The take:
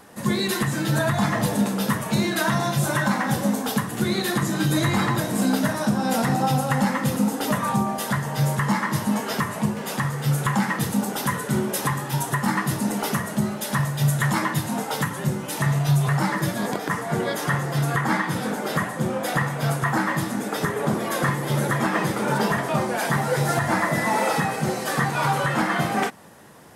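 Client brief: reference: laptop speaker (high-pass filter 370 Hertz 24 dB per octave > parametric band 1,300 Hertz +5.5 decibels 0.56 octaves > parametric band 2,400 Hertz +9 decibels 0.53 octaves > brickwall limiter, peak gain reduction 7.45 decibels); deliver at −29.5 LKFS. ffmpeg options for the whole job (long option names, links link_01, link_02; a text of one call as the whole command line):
ffmpeg -i in.wav -af "highpass=frequency=370:width=0.5412,highpass=frequency=370:width=1.3066,equalizer=frequency=1300:width_type=o:width=0.56:gain=5.5,equalizer=frequency=2400:width_type=o:width=0.53:gain=9,volume=-5dB,alimiter=limit=-19dB:level=0:latency=1" out.wav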